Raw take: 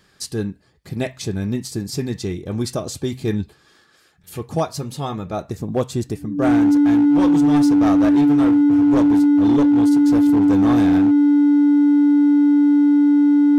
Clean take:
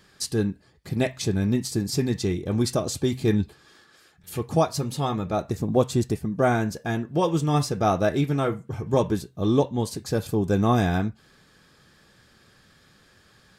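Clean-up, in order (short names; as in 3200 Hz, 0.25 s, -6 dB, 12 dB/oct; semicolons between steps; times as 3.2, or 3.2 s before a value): clip repair -11 dBFS; notch 290 Hz, Q 30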